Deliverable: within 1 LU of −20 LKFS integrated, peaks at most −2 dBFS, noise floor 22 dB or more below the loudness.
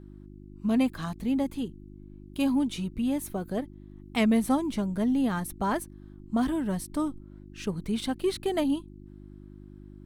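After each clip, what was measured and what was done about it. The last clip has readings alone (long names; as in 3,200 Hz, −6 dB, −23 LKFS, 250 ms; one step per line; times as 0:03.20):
mains hum 50 Hz; hum harmonics up to 350 Hz; level of the hum −46 dBFS; integrated loudness −29.0 LKFS; sample peak −13.0 dBFS; target loudness −20.0 LKFS
→ hum removal 50 Hz, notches 7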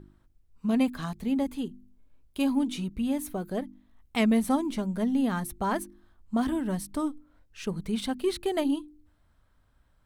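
mains hum none found; integrated loudness −29.5 LKFS; sample peak −13.0 dBFS; target loudness −20.0 LKFS
→ level +9.5 dB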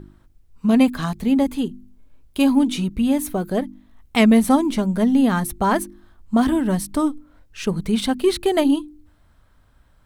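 integrated loudness −20.0 LKFS; sample peak −3.5 dBFS; background noise floor −56 dBFS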